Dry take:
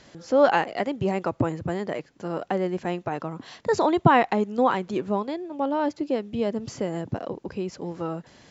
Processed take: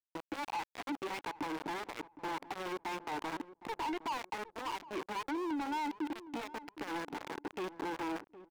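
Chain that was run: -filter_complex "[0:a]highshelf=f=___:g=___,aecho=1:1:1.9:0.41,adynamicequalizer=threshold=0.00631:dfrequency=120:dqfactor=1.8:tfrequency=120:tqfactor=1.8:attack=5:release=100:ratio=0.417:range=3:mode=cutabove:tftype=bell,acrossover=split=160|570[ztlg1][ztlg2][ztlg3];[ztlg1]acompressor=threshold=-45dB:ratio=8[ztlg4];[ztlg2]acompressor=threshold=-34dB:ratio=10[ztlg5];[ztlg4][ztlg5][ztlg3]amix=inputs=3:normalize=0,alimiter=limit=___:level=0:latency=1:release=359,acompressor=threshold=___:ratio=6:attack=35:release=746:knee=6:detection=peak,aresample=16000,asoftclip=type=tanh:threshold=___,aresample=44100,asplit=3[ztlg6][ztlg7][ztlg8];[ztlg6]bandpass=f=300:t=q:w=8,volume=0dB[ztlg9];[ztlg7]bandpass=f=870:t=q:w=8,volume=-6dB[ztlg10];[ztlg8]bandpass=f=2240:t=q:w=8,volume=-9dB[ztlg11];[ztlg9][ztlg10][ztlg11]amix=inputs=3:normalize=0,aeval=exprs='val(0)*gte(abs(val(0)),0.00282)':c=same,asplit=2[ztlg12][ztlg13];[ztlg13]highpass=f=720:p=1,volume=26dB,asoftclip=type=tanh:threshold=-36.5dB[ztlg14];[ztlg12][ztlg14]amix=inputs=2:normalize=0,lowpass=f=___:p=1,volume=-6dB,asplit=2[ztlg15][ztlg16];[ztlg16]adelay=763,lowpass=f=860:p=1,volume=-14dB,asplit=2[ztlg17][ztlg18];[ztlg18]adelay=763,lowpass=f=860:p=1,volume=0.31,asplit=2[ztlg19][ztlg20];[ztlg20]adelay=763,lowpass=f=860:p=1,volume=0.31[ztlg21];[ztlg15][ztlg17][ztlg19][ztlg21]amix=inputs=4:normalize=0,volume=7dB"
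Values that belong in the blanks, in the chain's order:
3100, -7.5, -15dB, -30dB, -32dB, 3200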